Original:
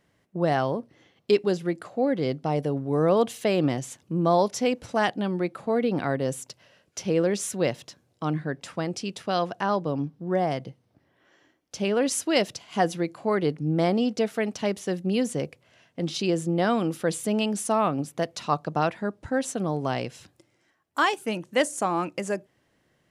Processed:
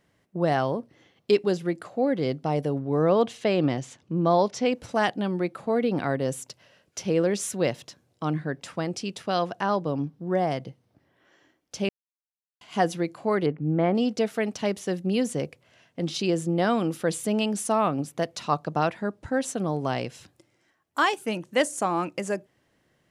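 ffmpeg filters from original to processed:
ffmpeg -i in.wav -filter_complex "[0:a]asplit=3[link_01][link_02][link_03];[link_01]afade=type=out:start_time=2.79:duration=0.02[link_04];[link_02]lowpass=5600,afade=type=in:start_time=2.79:duration=0.02,afade=type=out:start_time=4.71:duration=0.02[link_05];[link_03]afade=type=in:start_time=4.71:duration=0.02[link_06];[link_04][link_05][link_06]amix=inputs=3:normalize=0,asettb=1/sr,asplit=3[link_07][link_08][link_09];[link_07]atrim=end=13.464[link_10];[link_08]atrim=start=13.46:end=13.95,asetpts=PTS-STARTPTS,afade=type=in:duration=0.004:curve=qsin,afade=type=out:start_time=0.486:duration=0.004:curve=qsin,lowpass=frequency=2500:width=0.5412,lowpass=frequency=2500:width=1.3066[link_11];[link_09]atrim=start=13.946[link_12];[link_10][link_11]acrossfade=duration=0.004:curve1=hsin:curve2=qsin[link_13];[link_13][link_12]acrossfade=duration=0.004:curve1=qsin:curve2=hsin,asplit=3[link_14][link_15][link_16];[link_14]atrim=end=11.89,asetpts=PTS-STARTPTS,afade=type=out:start_time=11.886:duration=0.004:curve=hsin[link_17];[link_15]atrim=start=11.89:end=12.61,asetpts=PTS-STARTPTS,volume=0[link_18];[link_16]atrim=start=12.61,asetpts=PTS-STARTPTS,afade=type=in:duration=0.004:curve=hsin[link_19];[link_17][link_18][link_19]concat=n=3:v=0:a=1" out.wav

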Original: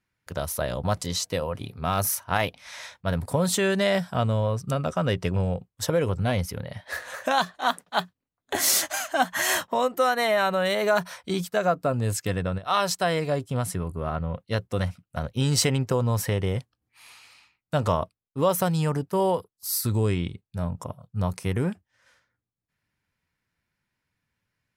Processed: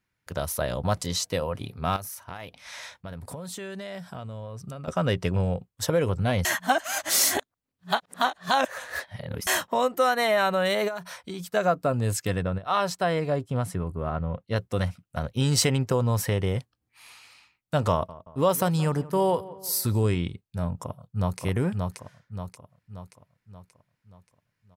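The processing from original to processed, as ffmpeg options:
ffmpeg -i in.wav -filter_complex "[0:a]asettb=1/sr,asplit=3[link_01][link_02][link_03];[link_01]atrim=end=1.964[link_04];[link_02]atrim=start=1.96:end=4.88,asetpts=PTS-STARTPTS,afade=type=in:duration=0.004:curve=qsin,afade=type=out:start_time=2.916:duration=0.004:curve=qsin,acompressor=threshold=-35dB:ratio=6:attack=3.2:release=140:knee=1:detection=peak[link_05];[link_03]atrim=start=4.876[link_06];[link_04][link_05]acrossfade=duration=0.004:curve1=hsin:curve2=qsin[link_07];[link_07][link_06]acrossfade=duration=0.004:curve1=qsin:curve2=hsin,asplit=3[link_08][link_09][link_10];[link_08]afade=type=out:start_time=10.87:duration=0.02[link_11];[link_09]acompressor=threshold=-34dB:ratio=3:attack=3.2:release=140:knee=1:detection=peak,afade=type=in:start_time=10.87:duration=0.02,afade=type=out:start_time=11.51:duration=0.02[link_12];[link_10]afade=type=in:start_time=11.51:duration=0.02[link_13];[link_11][link_12][link_13]amix=inputs=3:normalize=0,asettb=1/sr,asplit=3[link_14][link_15][link_16];[link_14]atrim=end=12.434[link_17];[link_15]atrim=start=12.43:end=14.56,asetpts=PTS-STARTPTS,afade=type=in:duration=0.004:curve=qsin,afade=type=out:start_time=2.126:duration=0.004:curve=qsin,highshelf=frequency=2900:gain=-8.5[link_18];[link_16]atrim=start=14.556[link_19];[link_17][link_18]acrossfade=duration=0.004:curve1=hsin:curve2=qsin[link_20];[link_20][link_19]acrossfade=duration=0.004:curve1=qsin:curve2=hsin,asettb=1/sr,asplit=3[link_21][link_22][link_23];[link_21]atrim=end=17.914[link_24];[link_22]atrim=start=17.91:end=20.16,asetpts=PTS-STARTPTS,afade=type=in:duration=0.004:curve=qsin,afade=type=out:start_time=2.246:duration=0.004:curve=qsin,asplit=2[link_25][link_26];[link_26]adelay=176,lowpass=frequency=1900:poles=1,volume=-17.5dB,asplit=2[link_27][link_28];[link_28]adelay=176,lowpass=frequency=1900:poles=1,volume=0.52,asplit=2[link_29][link_30];[link_30]adelay=176,lowpass=frequency=1900:poles=1,volume=0.52,asplit=2[link_31][link_32];[link_32]adelay=176,lowpass=frequency=1900:poles=1,volume=0.52[link_33];[link_25][link_27][link_29][link_31][link_33]amix=inputs=5:normalize=0,atrim=end_sample=99225[link_34];[link_23]atrim=start=20.156[link_35];[link_24][link_34]acrossfade=duration=0.004:curve1=hsin:curve2=qsin[link_36];[link_36][link_35]acrossfade=duration=0.004:curve1=qsin:curve2=hsin,asplit=2[link_37][link_38];[link_38]afade=type=in:start_time=20.82:duration=0.01,afade=type=out:start_time=21.4:duration=0.01,aecho=0:1:580|1160|1740|2320|2900|3480|4060:0.707946|0.353973|0.176986|0.0884932|0.0442466|0.0221233|0.0110617[link_39];[link_37][link_39]amix=inputs=2:normalize=0,asplit=3[link_40][link_41][link_42];[link_40]atrim=end=6.452[link_43];[link_41]atrim=start=6.448:end=9.472,asetpts=PTS-STARTPTS,areverse[link_44];[link_42]atrim=start=9.468[link_45];[link_43][link_44]acrossfade=duration=0.004:curve1=hsin:curve2=hsin[link_46];[link_46][link_45]acrossfade=duration=0.004:curve1=hsin:curve2=hsin" out.wav

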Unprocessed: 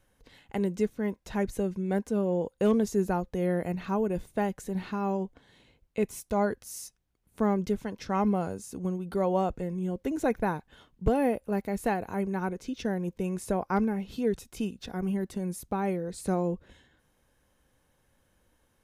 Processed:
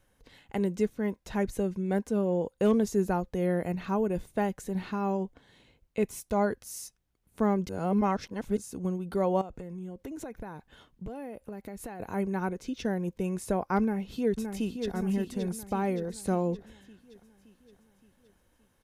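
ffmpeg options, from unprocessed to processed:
ffmpeg -i in.wav -filter_complex "[0:a]asettb=1/sr,asplit=3[link_01][link_02][link_03];[link_01]atrim=end=9.414[link_04];[link_02]atrim=start=9.41:end=12,asetpts=PTS-STARTPTS,afade=type=in:duration=0.004:curve=qsin,afade=type=out:start_time=2.586:duration=0.004:curve=qsin,acompressor=threshold=-36dB:ratio=8:attack=3.2:release=140:knee=1:detection=peak[link_05];[link_03]atrim=start=11.996[link_06];[link_04][link_05]acrossfade=duration=0.004:curve1=hsin:curve2=qsin[link_07];[link_07][link_06]acrossfade=duration=0.004:curve1=qsin:curve2=hsin,asplit=2[link_08][link_09];[link_09]afade=type=in:start_time=13.8:duration=0.01,afade=type=out:start_time=14.94:duration=0.01,aecho=0:1:570|1140|1710|2280|2850|3420|3990:0.473151|0.260233|0.143128|0.0787205|0.0432963|0.023813|0.0130971[link_10];[link_08][link_10]amix=inputs=2:normalize=0,asplit=3[link_11][link_12][link_13];[link_11]atrim=end=7.692[link_14];[link_12]atrim=start=7.688:end=8.572,asetpts=PTS-STARTPTS,areverse[link_15];[link_13]atrim=start=8.568[link_16];[link_14][link_15]acrossfade=duration=0.004:curve1=hsin:curve2=hsin[link_17];[link_17][link_16]acrossfade=duration=0.004:curve1=hsin:curve2=hsin" out.wav

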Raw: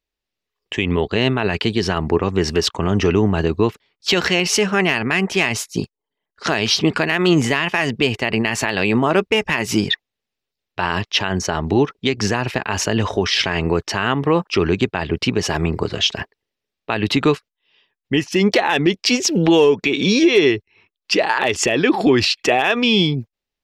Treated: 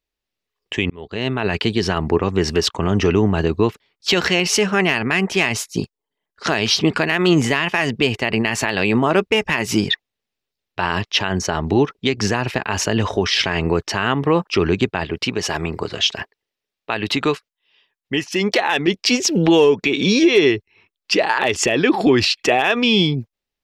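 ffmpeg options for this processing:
ffmpeg -i in.wav -filter_complex "[0:a]asettb=1/sr,asplit=3[link_01][link_02][link_03];[link_01]atrim=end=15.054[link_04];[link_02]atrim=start=15.05:end=18.88,asetpts=PTS-STARTPTS,afade=type=in:duration=0.004:curve=qsin,afade=type=out:start_time=3.826:duration=0.004:curve=qsin,lowshelf=frequency=370:gain=-7[link_05];[link_03]atrim=start=18.876[link_06];[link_04][link_05]acrossfade=duration=0.004:curve1=hsin:curve2=qsin[link_07];[link_07][link_06]acrossfade=duration=0.004:curve1=qsin:curve2=hsin,asplit=2[link_08][link_09];[link_08]atrim=end=0.9,asetpts=PTS-STARTPTS,afade=type=out:start_time=0.896:duration=0.004:curve=hsin[link_10];[link_09]atrim=start=0.9,asetpts=PTS-STARTPTS,afade=type=in:duration=0.62[link_11];[link_10][link_11]concat=n=2:v=0:a=1" out.wav

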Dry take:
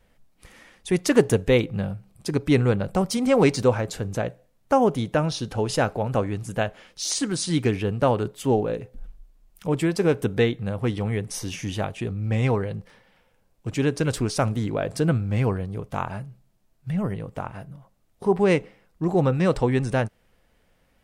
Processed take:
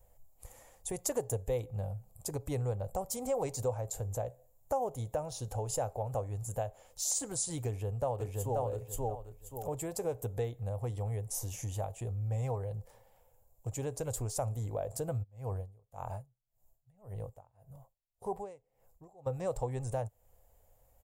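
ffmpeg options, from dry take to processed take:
ffmpeg -i in.wav -filter_complex "[0:a]asplit=2[link_01][link_02];[link_02]afade=type=in:start_time=7.67:duration=0.01,afade=type=out:start_time=8.62:duration=0.01,aecho=0:1:530|1060|1590:0.841395|0.168279|0.0336558[link_03];[link_01][link_03]amix=inputs=2:normalize=0,asplit=3[link_04][link_05][link_06];[link_04]afade=type=out:start_time=15.22:duration=0.02[link_07];[link_05]aeval=exprs='val(0)*pow(10,-31*(0.5-0.5*cos(2*PI*1.8*n/s))/20)':channel_layout=same,afade=type=in:start_time=15.22:duration=0.02,afade=type=out:start_time=19.26:duration=0.02[link_08];[link_06]afade=type=in:start_time=19.26:duration=0.02[link_09];[link_07][link_08][link_09]amix=inputs=3:normalize=0,firequalizer=gain_entry='entry(110,0);entry(170,-16);entry(340,-14);entry(500,-2);entry(770,0);entry(1400,-16);entry(2900,-16);entry(8600,-4);entry(13000,9)':delay=0.05:min_phase=1,acompressor=threshold=-38dB:ratio=2,equalizer=frequency=7200:width=4.4:gain=14.5" out.wav

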